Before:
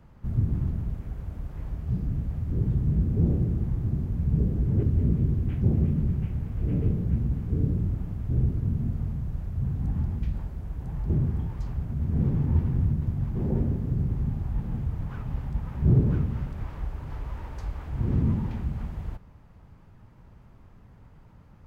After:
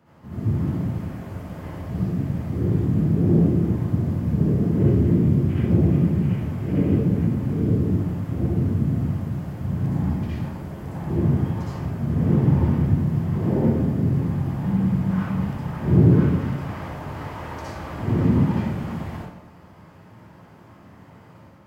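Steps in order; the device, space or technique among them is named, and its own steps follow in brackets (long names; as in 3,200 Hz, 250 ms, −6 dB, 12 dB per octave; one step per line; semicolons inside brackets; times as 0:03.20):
far laptop microphone (convolution reverb RT60 0.75 s, pre-delay 55 ms, DRR −7.5 dB; high-pass filter 190 Hz 12 dB per octave; automatic gain control gain up to 4 dB)
0:14.65–0:15.53: parametric band 190 Hz +14.5 dB 0.23 octaves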